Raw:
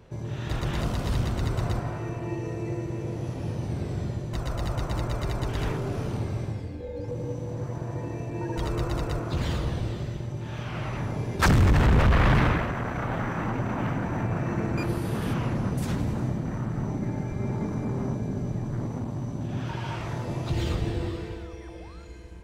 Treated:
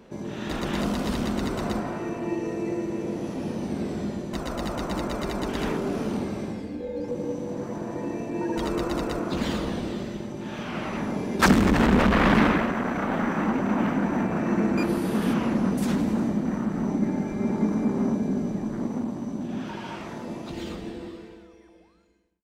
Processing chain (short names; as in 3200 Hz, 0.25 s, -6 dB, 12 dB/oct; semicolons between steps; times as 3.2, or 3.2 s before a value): ending faded out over 4.15 s; resonant low shelf 160 Hz -9 dB, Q 3; gain +3 dB